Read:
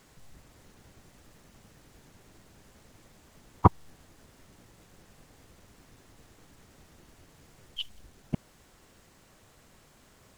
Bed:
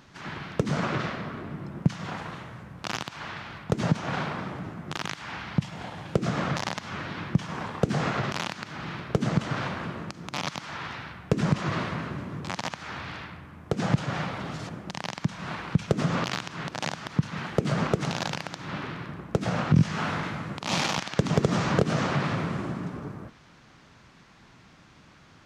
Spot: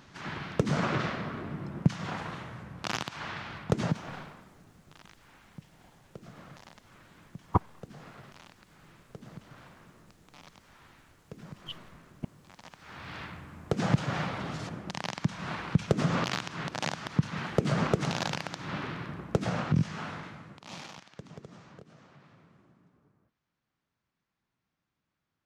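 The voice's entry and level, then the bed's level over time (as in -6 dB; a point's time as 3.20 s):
3.90 s, -6.0 dB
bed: 3.75 s -1 dB
4.50 s -22 dB
12.52 s -22 dB
13.22 s -1.5 dB
19.34 s -1.5 dB
21.97 s -30.5 dB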